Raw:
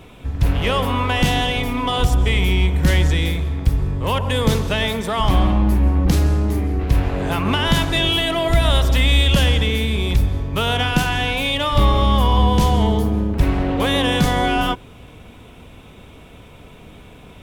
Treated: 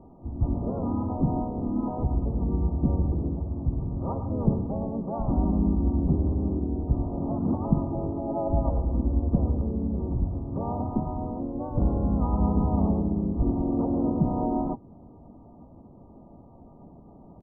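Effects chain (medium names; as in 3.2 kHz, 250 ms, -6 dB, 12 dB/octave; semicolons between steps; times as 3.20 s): rippled Chebyshev low-pass 980 Hz, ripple 9 dB; dynamic bell 760 Hz, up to -5 dB, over -40 dBFS, Q 1.6; harmony voices -3 st -3 dB, +4 st -6 dB; trim -4 dB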